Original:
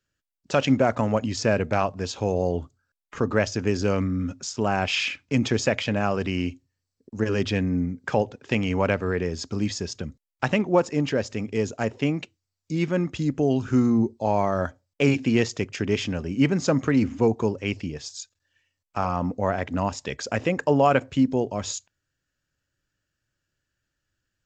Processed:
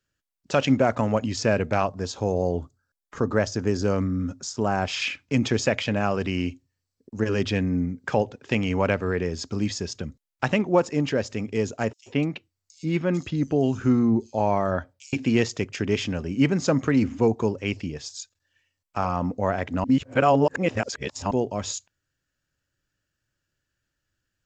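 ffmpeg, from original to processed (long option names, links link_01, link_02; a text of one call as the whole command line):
ffmpeg -i in.wav -filter_complex "[0:a]asettb=1/sr,asplit=3[link_01][link_02][link_03];[link_01]atrim=end=1.874[link_04];[link_02]atrim=start=1.87:end=5.02,asetpts=PTS-STARTPTS,afade=type=in:duration=0.004:curve=qsin,afade=type=out:start_time=3.146:duration=0.004:curve=qsin,equalizer=frequency=2600:width=1.8:gain=-8[link_05];[link_03]atrim=start=5.016[link_06];[link_04][link_05]acrossfade=duration=0.004:curve1=hsin:curve2=qsin[link_07];[link_07][link_06]acrossfade=duration=0.004:curve1=qsin:curve2=hsin,asettb=1/sr,asplit=3[link_08][link_09][link_10];[link_08]atrim=end=11.934[link_11];[link_09]atrim=start=11.93:end=15.13,asetpts=PTS-STARTPTS,afade=type=in:duration=0.004:curve=qsin,afade=type=out:start_time=3.196:duration=0.004:curve=qsin,acrossover=split=5000[link_12][link_13];[link_12]adelay=130[link_14];[link_14][link_13]amix=inputs=2:normalize=0,atrim=end_sample=141120[link_15];[link_10]atrim=start=15.126[link_16];[link_11][link_15]acrossfade=duration=0.004:curve1=hsin:curve2=qsin[link_17];[link_17][link_16]acrossfade=duration=0.004:curve1=qsin:curve2=hsin,asplit=3[link_18][link_19][link_20];[link_18]atrim=end=19.842[link_21];[link_19]atrim=start=19.838:end=21.312,asetpts=PTS-STARTPTS,areverse[link_22];[link_20]atrim=start=21.308[link_23];[link_21][link_22]acrossfade=duration=0.004:curve1=hsin:curve2=hsin[link_24];[link_24][link_23]acrossfade=duration=0.004:curve1=hsin:curve2=hsin" out.wav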